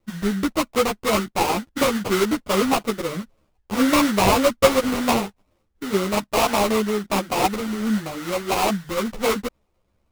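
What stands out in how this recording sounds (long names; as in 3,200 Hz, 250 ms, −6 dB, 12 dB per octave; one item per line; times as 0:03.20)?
aliases and images of a low sample rate 1,700 Hz, jitter 20%
a shimmering, thickened sound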